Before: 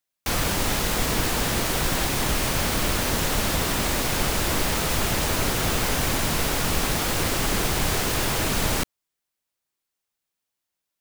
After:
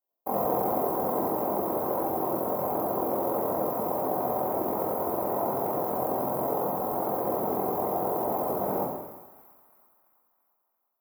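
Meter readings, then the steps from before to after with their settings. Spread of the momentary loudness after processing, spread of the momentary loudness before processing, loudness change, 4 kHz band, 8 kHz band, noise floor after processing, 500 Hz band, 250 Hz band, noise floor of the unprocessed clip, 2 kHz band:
2 LU, 0 LU, -5.0 dB, under -35 dB, -23.5 dB, -77 dBFS, +2.5 dB, -3.5 dB, -84 dBFS, -23.5 dB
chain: tone controls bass -10 dB, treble -6 dB; in parallel at -11 dB: hard clipper -28.5 dBFS, distortion -9 dB; on the sum: inverse Chebyshev band-stop 1.7–8.6 kHz, stop band 40 dB; saturation -20.5 dBFS, distortion -22 dB; gain riding 2 s; AM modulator 44 Hz, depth 85%; high-pass 180 Hz 12 dB/octave; peaking EQ 690 Hz +2.5 dB 0.3 oct; two-band feedback delay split 1.2 kHz, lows 94 ms, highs 339 ms, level -14 dB; two-slope reverb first 0.99 s, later 2.5 s, from -23 dB, DRR -4.5 dB

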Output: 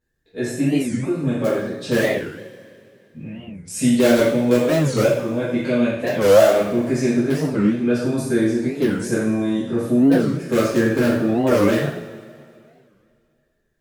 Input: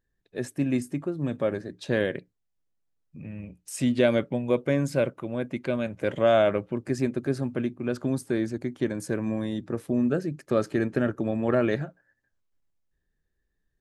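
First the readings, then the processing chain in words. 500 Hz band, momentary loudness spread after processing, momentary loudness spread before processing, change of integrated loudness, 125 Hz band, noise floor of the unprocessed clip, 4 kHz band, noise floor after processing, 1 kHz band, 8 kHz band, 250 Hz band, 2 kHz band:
+8.0 dB, 13 LU, 11 LU, +8.5 dB, +7.0 dB, -78 dBFS, +9.5 dB, -65 dBFS, +6.5 dB, +11.5 dB, +9.0 dB, +8.0 dB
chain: spectral sustain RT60 0.33 s; in parallel at -8.5 dB: integer overflow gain 13.5 dB; on the sum: two-slope reverb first 0.65 s, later 2.5 s, from -18 dB, DRR -9 dB; Chebyshev shaper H 7 -45 dB, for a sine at 4 dBFS; warped record 45 rpm, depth 250 cents; trim -5 dB

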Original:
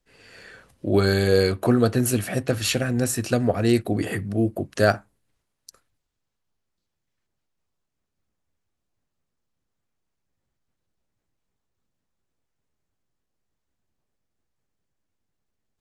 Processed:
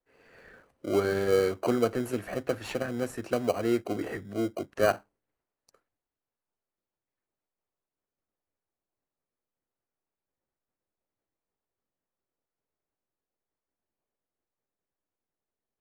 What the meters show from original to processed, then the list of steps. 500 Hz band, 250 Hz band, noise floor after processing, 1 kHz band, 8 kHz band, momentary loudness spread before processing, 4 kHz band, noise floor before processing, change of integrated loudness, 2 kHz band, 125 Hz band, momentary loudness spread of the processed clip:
-4.5 dB, -8.5 dB, under -85 dBFS, -4.0 dB, -14.5 dB, 7 LU, -12.0 dB, -80 dBFS, -7.0 dB, -8.0 dB, -15.0 dB, 9 LU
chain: three-band isolator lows -14 dB, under 300 Hz, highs -15 dB, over 2.1 kHz; in parallel at -7 dB: sample-and-hold 25×; on the sum: trim -5.5 dB

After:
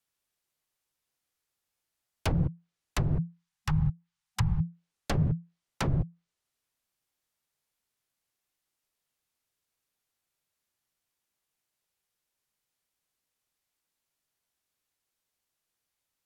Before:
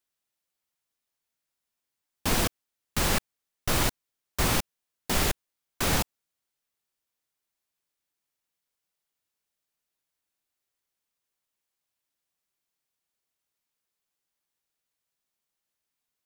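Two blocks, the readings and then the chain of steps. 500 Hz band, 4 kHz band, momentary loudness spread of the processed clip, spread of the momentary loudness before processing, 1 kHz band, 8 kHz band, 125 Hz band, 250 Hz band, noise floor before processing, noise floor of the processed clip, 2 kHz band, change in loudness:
-7.5 dB, -13.0 dB, 10 LU, 11 LU, -8.5 dB, -16.0 dB, +6.0 dB, +0.5 dB, under -85 dBFS, under -85 dBFS, -10.5 dB, -3.5 dB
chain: low-pass that closes with the level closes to 350 Hz, closed at -22 dBFS; time-frequency box 3.23–4.65 s, 380–910 Hz -17 dB; frequency shift -170 Hz; trim +1.5 dB

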